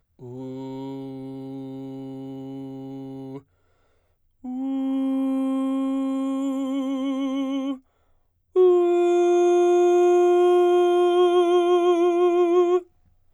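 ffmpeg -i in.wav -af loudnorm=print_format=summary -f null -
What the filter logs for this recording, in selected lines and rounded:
Input Integrated:    -20.3 LUFS
Input True Peak:     -10.0 dBTP
Input LRA:            16.6 LU
Input Threshold:     -32.0 LUFS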